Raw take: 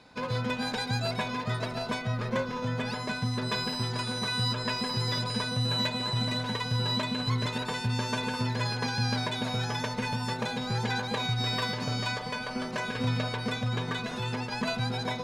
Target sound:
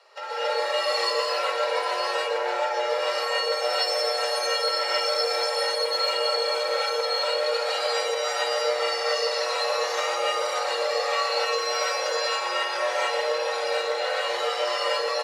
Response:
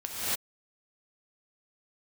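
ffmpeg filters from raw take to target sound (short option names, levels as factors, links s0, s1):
-filter_complex "[0:a]afreqshift=350,acompressor=threshold=0.0316:ratio=4,aecho=1:1:117:0.282[s0];[1:a]atrim=start_sample=2205[s1];[s0][s1]afir=irnorm=-1:irlink=0"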